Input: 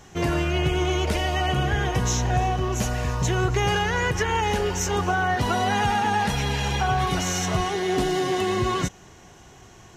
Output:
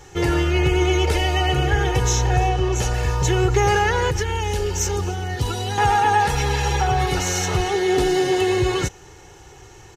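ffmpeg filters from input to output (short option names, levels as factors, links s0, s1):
-filter_complex "[0:a]asettb=1/sr,asplit=3[s0][s1][s2];[s0]atrim=end=2.494[s3];[s1]atrim=start=2.49:end=2.94,asetpts=PTS-STARTPTS,afade=t=in:d=0.004:c=qsin,afade=t=out:st=0.446:d=0.004:c=qsin,lowpass=9800[s4];[s2]atrim=start=2.936[s5];[s3][s4]acrossfade=d=0.004:c1=hsin:c2=qsin[s6];[s6][s5]acrossfade=d=0.004:c1=qsin:c2=hsin,asettb=1/sr,asplit=3[s7][s8][s9];[s7]atrim=end=4.104[s10];[s8]atrim=start=4.1:end=5.78,asetpts=PTS-STARTPTS,afade=t=in:d=0.004:c=qsin,afade=t=out:st=1.676:d=0.004:c=qsin,acrossover=split=320|3000[s11][s12][s13];[s12]acompressor=threshold=0.0158:ratio=4[s14];[s11][s14][s13]amix=inputs=3:normalize=0[s15];[s9]atrim=start=5.776[s16];[s10][s15]acrossfade=d=0.004:c1=hsin:c2=qsin[s17];[s17][s16]acrossfade=d=0.004:c1=qsin:c2=hsin,aecho=1:1:2.3:0.75,volume=1.26"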